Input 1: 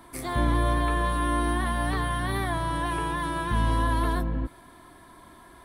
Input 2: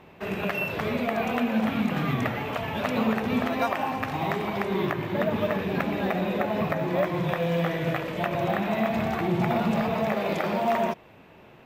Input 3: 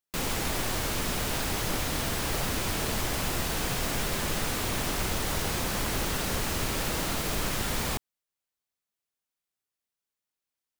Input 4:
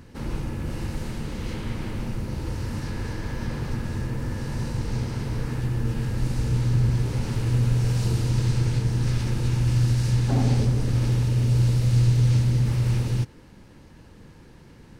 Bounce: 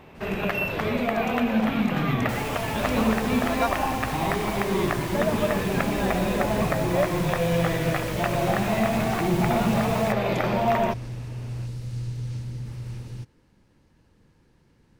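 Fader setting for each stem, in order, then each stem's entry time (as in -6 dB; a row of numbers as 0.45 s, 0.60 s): -12.5 dB, +2.0 dB, -7.5 dB, -12.5 dB; 2.45 s, 0.00 s, 2.15 s, 0.00 s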